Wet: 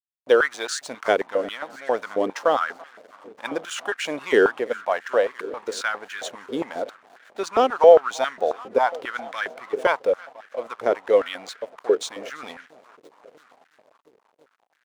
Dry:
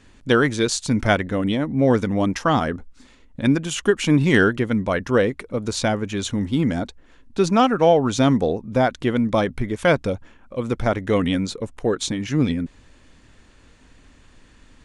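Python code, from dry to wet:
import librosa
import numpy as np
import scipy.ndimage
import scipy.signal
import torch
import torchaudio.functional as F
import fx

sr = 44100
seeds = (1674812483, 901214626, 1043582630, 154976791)

y = fx.echo_heads(x, sr, ms=338, heads='first and third', feedback_pct=64, wet_db=-21)
y = fx.backlash(y, sr, play_db=-33.5)
y = fx.filter_held_highpass(y, sr, hz=7.4, low_hz=430.0, high_hz=1600.0)
y = y * librosa.db_to_amplitude(-5.0)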